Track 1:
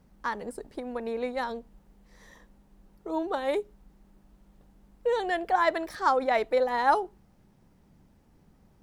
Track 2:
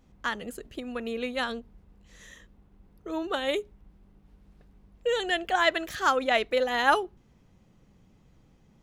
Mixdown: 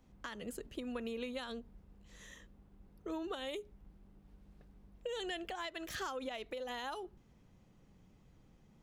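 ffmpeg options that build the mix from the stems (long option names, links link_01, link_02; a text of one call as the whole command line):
ffmpeg -i stem1.wav -i stem2.wav -filter_complex "[0:a]volume=-17dB,asplit=2[link_01][link_02];[1:a]volume=-4.5dB[link_03];[link_02]apad=whole_len=389179[link_04];[link_03][link_04]sidechaincompress=threshold=-46dB:ratio=8:attack=23:release=119[link_05];[link_01][link_05]amix=inputs=2:normalize=0,acrossover=split=130|3000[link_06][link_07][link_08];[link_07]acompressor=threshold=-37dB:ratio=6[link_09];[link_06][link_09][link_08]amix=inputs=3:normalize=0,alimiter=level_in=6dB:limit=-24dB:level=0:latency=1:release=284,volume=-6dB" out.wav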